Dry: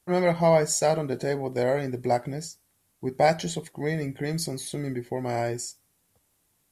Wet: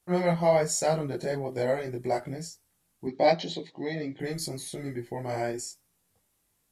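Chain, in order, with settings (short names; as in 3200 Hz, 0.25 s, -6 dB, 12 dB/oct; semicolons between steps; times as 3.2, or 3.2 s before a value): chorus voices 4, 1.1 Hz, delay 20 ms, depth 3.3 ms; 3.07–4.2 speaker cabinet 140–5300 Hz, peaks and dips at 150 Hz -6 dB, 290 Hz +5 dB, 1500 Hz -9 dB, 3900 Hz +9 dB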